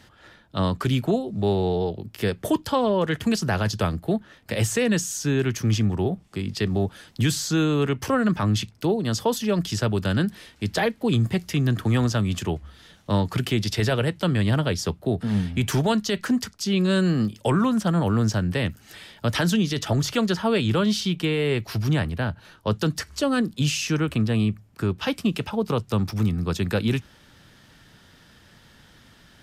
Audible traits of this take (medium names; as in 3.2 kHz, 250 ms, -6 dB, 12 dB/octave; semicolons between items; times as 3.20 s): noise floor -54 dBFS; spectral tilt -5.5 dB/octave